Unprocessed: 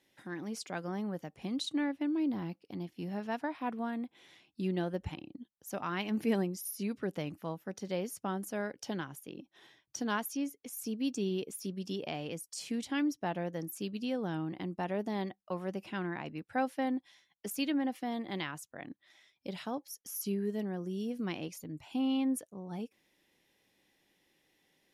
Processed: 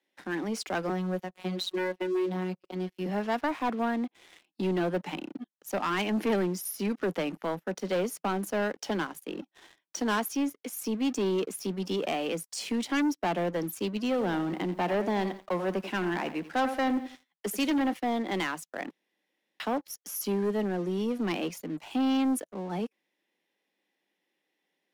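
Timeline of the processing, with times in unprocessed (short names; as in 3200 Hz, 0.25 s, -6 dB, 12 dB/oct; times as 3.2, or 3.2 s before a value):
0.89–3.06 robotiser 184 Hz
13.98–17.93 lo-fi delay 87 ms, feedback 35%, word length 10-bit, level -13.5 dB
18.9–19.6 room tone
whole clip: steep high-pass 160 Hz 96 dB/oct; tone controls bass -7 dB, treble -7 dB; sample leveller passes 3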